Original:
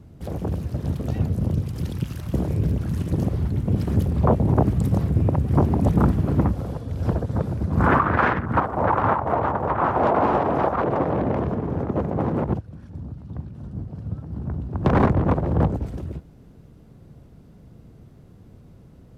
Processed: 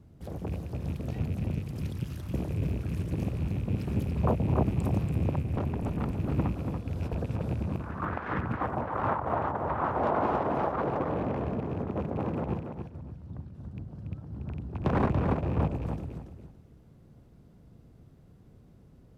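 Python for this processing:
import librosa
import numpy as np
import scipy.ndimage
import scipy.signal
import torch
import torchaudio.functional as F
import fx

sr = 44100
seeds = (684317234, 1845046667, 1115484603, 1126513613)

p1 = fx.rattle_buzz(x, sr, strikes_db=-22.0, level_db=-32.0)
p2 = fx.tube_stage(p1, sr, drive_db=18.0, bias=0.55, at=(5.42, 6.2))
p3 = fx.over_compress(p2, sr, threshold_db=-23.0, ratio=-0.5, at=(6.85, 8.99))
p4 = p3 + fx.echo_feedback(p3, sr, ms=284, feedback_pct=22, wet_db=-7, dry=0)
y = p4 * 10.0 ** (-8.5 / 20.0)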